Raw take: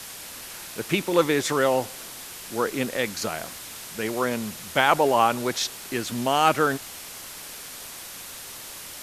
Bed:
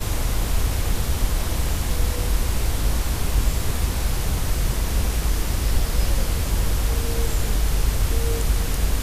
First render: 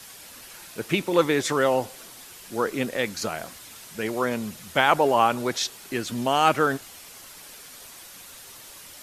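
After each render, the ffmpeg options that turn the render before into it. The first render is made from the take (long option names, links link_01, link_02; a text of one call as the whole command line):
ffmpeg -i in.wav -af "afftdn=noise_reduction=7:noise_floor=-40" out.wav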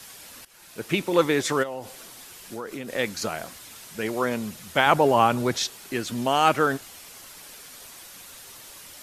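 ffmpeg -i in.wav -filter_complex "[0:a]asplit=3[link_01][link_02][link_03];[link_01]afade=type=out:start_time=1.62:duration=0.02[link_04];[link_02]acompressor=threshold=-31dB:ratio=4:attack=3.2:release=140:knee=1:detection=peak,afade=type=in:start_time=1.62:duration=0.02,afade=type=out:start_time=2.88:duration=0.02[link_05];[link_03]afade=type=in:start_time=2.88:duration=0.02[link_06];[link_04][link_05][link_06]amix=inputs=3:normalize=0,asettb=1/sr,asplit=3[link_07][link_08][link_09];[link_07]atrim=end=4.864[link_10];[link_08]atrim=start=4.86:end=5.65,asetpts=PTS-STARTPTS,afade=type=in:duration=0.004:curve=qsin,afade=type=out:start_time=0.786:duration=0.004:curve=qsin,equalizer=frequency=90:width_type=o:width=2.7:gain=8[link_11];[link_09]atrim=start=5.646[link_12];[link_10][link_11]acrossfade=duration=0.004:curve1=hsin:curve2=qsin[link_13];[link_13][link_12]acrossfade=duration=0.004:curve1=qsin:curve2=hsin,asplit=2[link_14][link_15];[link_14]atrim=end=0.45,asetpts=PTS-STARTPTS,afade=type=out:start_time=0.446:duration=0.004:curve=hsin:silence=0.149624[link_16];[link_15]atrim=start=0.45,asetpts=PTS-STARTPTS,afade=type=in:duration=0.67:curve=qsin:silence=0.149624[link_17];[link_16][link_17]concat=n=2:v=0:a=1" out.wav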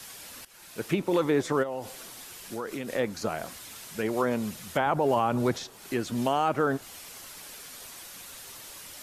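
ffmpeg -i in.wav -filter_complex "[0:a]acrossover=split=1300[link_01][link_02];[link_01]alimiter=limit=-15.5dB:level=0:latency=1[link_03];[link_02]acompressor=threshold=-37dB:ratio=12[link_04];[link_03][link_04]amix=inputs=2:normalize=0" out.wav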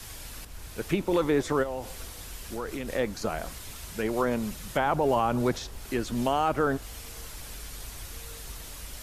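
ffmpeg -i in.wav -i bed.wav -filter_complex "[1:a]volume=-22.5dB[link_01];[0:a][link_01]amix=inputs=2:normalize=0" out.wav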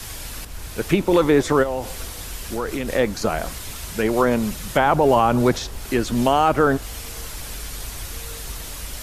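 ffmpeg -i in.wav -af "volume=8.5dB" out.wav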